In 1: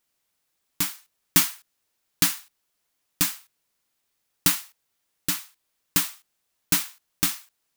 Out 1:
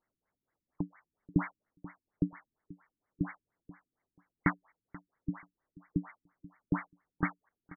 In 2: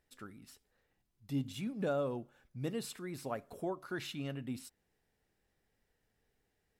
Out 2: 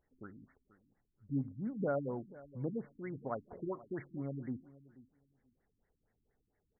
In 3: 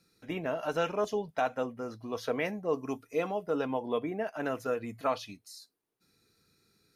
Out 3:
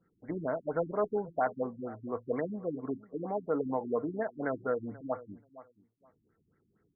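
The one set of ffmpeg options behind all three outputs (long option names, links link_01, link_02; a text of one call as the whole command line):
ffmpeg -i in.wav -filter_complex "[0:a]lowpass=frequency=4700:width_type=q:width=4.9,asplit=2[link_01][link_02];[link_02]adelay=484,lowpass=frequency=3200:poles=1,volume=-19dB,asplit=2[link_03][link_04];[link_04]adelay=484,lowpass=frequency=3200:poles=1,volume=0.17[link_05];[link_01][link_03][link_05]amix=inputs=3:normalize=0,afftfilt=real='re*lt(b*sr/1024,330*pow(2300/330,0.5+0.5*sin(2*PI*4.3*pts/sr)))':imag='im*lt(b*sr/1024,330*pow(2300/330,0.5+0.5*sin(2*PI*4.3*pts/sr)))':win_size=1024:overlap=0.75" out.wav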